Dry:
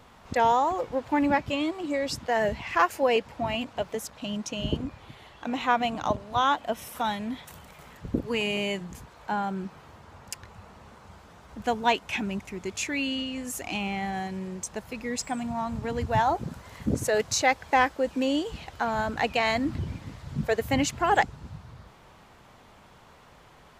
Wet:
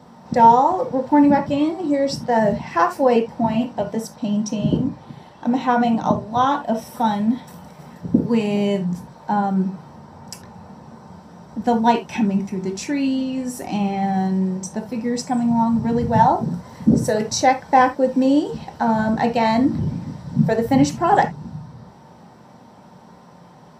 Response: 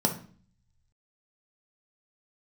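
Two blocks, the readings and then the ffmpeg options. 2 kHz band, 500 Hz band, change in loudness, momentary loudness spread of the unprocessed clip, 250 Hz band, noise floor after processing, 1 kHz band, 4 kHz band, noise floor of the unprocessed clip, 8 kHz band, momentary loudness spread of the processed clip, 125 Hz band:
+0.5 dB, +7.5 dB, +8.5 dB, 13 LU, +12.5 dB, -46 dBFS, +8.5 dB, -0.5 dB, -54 dBFS, +2.0 dB, 11 LU, +10.5 dB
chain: -filter_complex "[1:a]atrim=start_sample=2205,atrim=end_sample=3969[a];[0:a][a]afir=irnorm=-1:irlink=0,volume=-6dB"

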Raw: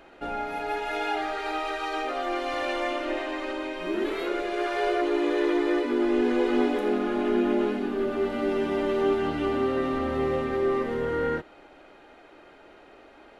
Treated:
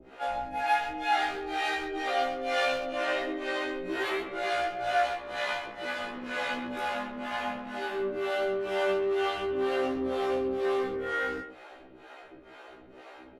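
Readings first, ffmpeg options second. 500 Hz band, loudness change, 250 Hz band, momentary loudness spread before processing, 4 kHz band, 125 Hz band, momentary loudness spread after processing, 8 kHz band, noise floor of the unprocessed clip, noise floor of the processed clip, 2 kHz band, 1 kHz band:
-4.5 dB, -3.5 dB, -10.5 dB, 7 LU, +1.5 dB, -10.5 dB, 21 LU, n/a, -52 dBFS, -52 dBFS, +1.5 dB, +0.5 dB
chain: -filter_complex "[0:a]asplit=2[a][b];[b]asoftclip=type=hard:threshold=-24.5dB,volume=-8dB[c];[a][c]amix=inputs=2:normalize=0,acrossover=split=440[d][e];[d]aeval=exprs='val(0)*(1-1/2+1/2*cos(2*PI*2.1*n/s))':c=same[f];[e]aeval=exprs='val(0)*(1-1/2-1/2*cos(2*PI*2.1*n/s))':c=same[g];[f][g]amix=inputs=2:normalize=0,acrossover=split=360|720[h][i][j];[h]acompressor=threshold=-45dB:ratio=5[k];[i]asoftclip=type=tanh:threshold=-39.5dB[l];[k][l][j]amix=inputs=3:normalize=0,asplit=2[m][n];[n]adelay=130,highpass=300,lowpass=3.4k,asoftclip=type=hard:threshold=-28.5dB,volume=-9dB[o];[m][o]amix=inputs=2:normalize=0,afftfilt=real='re*1.73*eq(mod(b,3),0)':imag='im*1.73*eq(mod(b,3),0)':win_size=2048:overlap=0.75,volume=5.5dB"

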